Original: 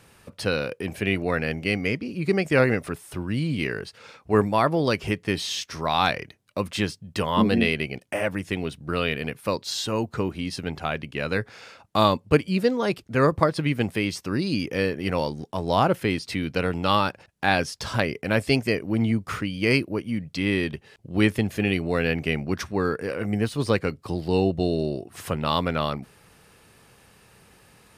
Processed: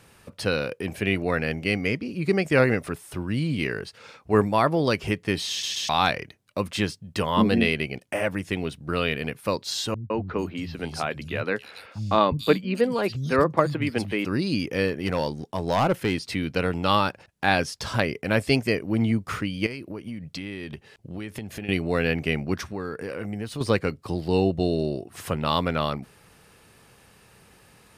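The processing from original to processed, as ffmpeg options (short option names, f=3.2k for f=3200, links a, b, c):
-filter_complex "[0:a]asettb=1/sr,asplit=3[a][b][c];[a]atrim=end=9.944[d];[b]atrim=start=9.94:end=14.25,asetpts=PTS-STARTPTS,afade=t=in:d=0.004:c=qsin,afade=t=out:st=4.306:d=0.004:c=qsin,acrossover=split=170|3700[e][f][g];[f]adelay=160[h];[g]adelay=440[i];[e][h][i]amix=inputs=3:normalize=0,atrim=end_sample=190071[j];[c]atrim=start=14.246[k];[d][j]acrossfade=d=0.004:c1=hsin:c2=qsin[l];[l][k]acrossfade=d=0.004:c1=qsin:c2=hsin,asettb=1/sr,asplit=3[m][n][o];[m]atrim=end=14.884[p];[n]atrim=start=14.88:end=16.17,asetpts=PTS-STARTPTS,afade=t=in:d=0.004:c=qsin,afade=t=out:st=1.286:d=0.004:c=qsin,volume=16dB,asoftclip=hard,volume=-16dB[q];[o]atrim=start=16.166[r];[p][q]acrossfade=d=0.004:c1=hsin:c2=qsin[s];[s][r]acrossfade=d=0.004:c1=qsin:c2=hsin,asettb=1/sr,asplit=3[t][u][v];[t]atrim=end=19.664[w];[u]atrim=start=19.66:end=21.69,asetpts=PTS-STARTPTS,afade=t=in:d=0.004:c=qsin,afade=t=out:st=2.026:d=0.004:c=qsin,acompressor=threshold=-30dB:ratio=10:attack=3.2:release=140:knee=1:detection=peak[x];[v]atrim=start=21.686[y];[w][x]acrossfade=d=0.004:c1=hsin:c2=qsin[z];[z][y]acrossfade=d=0.004:c1=qsin:c2=hsin,asettb=1/sr,asplit=3[aa][ab][ac];[aa]atrim=end=22.554[ad];[ab]atrim=start=22.55:end=23.61,asetpts=PTS-STARTPTS,afade=t=in:d=0.004:c=qsin,afade=t=out:st=1.056:d=0.004:c=qsin,acompressor=threshold=-29dB:ratio=3:attack=3.2:release=140:knee=1:detection=peak[ae];[ac]atrim=start=23.606[af];[ad][ae]acrossfade=d=0.004:c1=hsin:c2=qsin[ag];[ag][af]acrossfade=d=0.004:c1=qsin:c2=hsin,asplit=4[ah][ai][aj][ak];[ah]atrim=end=5.632[al];[ai]atrim=start=5.498:end=5.632[am];[aj]atrim=start=5.498:end=5.632[an];[ak]atrim=start=5.888[ao];[al][am]acrossfade=d=0.004:c1=hsin:c2=hsin[ap];[ap][an]acrossfade=d=0.004:c1=hsin:c2=hsin[aq];[aq][ao]acrossfade=d=0.004:c1=hsin:c2=hsin"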